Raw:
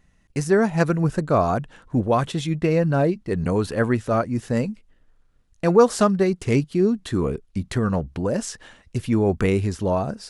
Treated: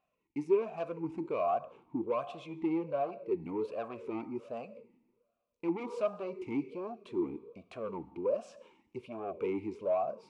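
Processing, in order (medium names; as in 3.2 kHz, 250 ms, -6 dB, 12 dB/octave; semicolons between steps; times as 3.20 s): two-slope reverb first 0.94 s, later 2.5 s, from -23 dB, DRR 14 dB; saturation -19 dBFS, distortion -10 dB; talking filter a-u 1.3 Hz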